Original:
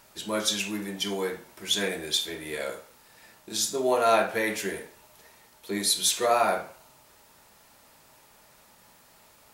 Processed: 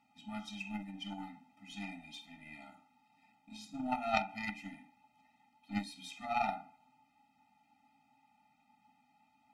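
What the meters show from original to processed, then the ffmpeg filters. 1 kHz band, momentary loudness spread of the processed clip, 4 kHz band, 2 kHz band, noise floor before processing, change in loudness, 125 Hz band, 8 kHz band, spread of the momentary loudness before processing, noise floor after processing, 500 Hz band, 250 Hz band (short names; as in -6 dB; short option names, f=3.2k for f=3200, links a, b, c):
-9.5 dB, 18 LU, -20.5 dB, -11.0 dB, -58 dBFS, -13.5 dB, -7.5 dB, -29.5 dB, 12 LU, -73 dBFS, -19.0 dB, -8.0 dB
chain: -filter_complex "[0:a]asplit=3[a][b][c];[a]bandpass=f=300:t=q:w=8,volume=0dB[d];[b]bandpass=f=870:t=q:w=8,volume=-6dB[e];[c]bandpass=f=2.24k:t=q:w=8,volume=-9dB[f];[d][e][f]amix=inputs=3:normalize=0,aeval=exprs='0.0631*(cos(1*acos(clip(val(0)/0.0631,-1,1)))-cos(1*PI/2))+0.00141*(cos(2*acos(clip(val(0)/0.0631,-1,1)))-cos(2*PI/2))+0.0178*(cos(3*acos(clip(val(0)/0.0631,-1,1)))-cos(3*PI/2))+0.000794*(cos(4*acos(clip(val(0)/0.0631,-1,1)))-cos(4*PI/2))+0.000891*(cos(5*acos(clip(val(0)/0.0631,-1,1)))-cos(5*PI/2))':c=same,afftfilt=real='re*eq(mod(floor(b*sr/1024/300),2),0)':imag='im*eq(mod(floor(b*sr/1024/300),2),0)':win_size=1024:overlap=0.75,volume=18dB"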